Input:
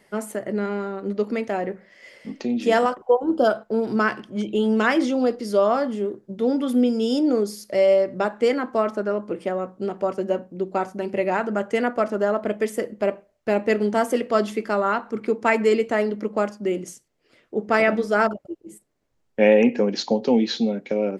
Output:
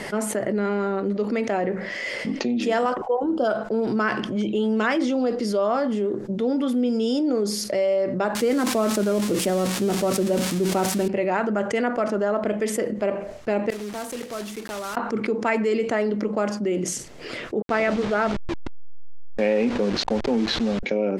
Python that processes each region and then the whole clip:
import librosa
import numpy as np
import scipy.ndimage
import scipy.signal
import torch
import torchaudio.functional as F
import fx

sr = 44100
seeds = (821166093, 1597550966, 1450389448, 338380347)

y = fx.chain(x, sr, fx.crossing_spikes(level_db=-19.0),
    fx.low_shelf(hz=360.0, db=11.5),
    fx.sustainer(db_per_s=100.0), at=(8.35, 11.08))
y = fx.chain(y, sr, fx.block_float(bits=3),
    fx.high_shelf(hz=9200.0, db=10.5),
    fx.gate_flip(shuts_db=-22.0, range_db=-31), at=(13.7, 14.97))
y = fx.chain(y, sr, fx.delta_hold(step_db=-28.0),
    fx.lowpass(hz=5400.0, slope=12), at=(17.62, 20.83))
y = scipy.signal.sosfilt(scipy.signal.bessel(2, 8300.0, 'lowpass', norm='mag', fs=sr, output='sos'), y)
y = fx.env_flatten(y, sr, amount_pct=70)
y = y * librosa.db_to_amplitude(-8.0)